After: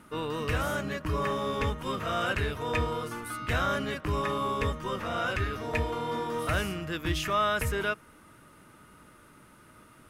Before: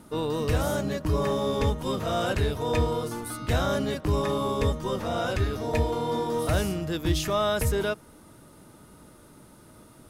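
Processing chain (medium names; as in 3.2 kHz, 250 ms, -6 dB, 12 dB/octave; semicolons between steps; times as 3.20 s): high-order bell 1.8 kHz +9 dB; trim -5.5 dB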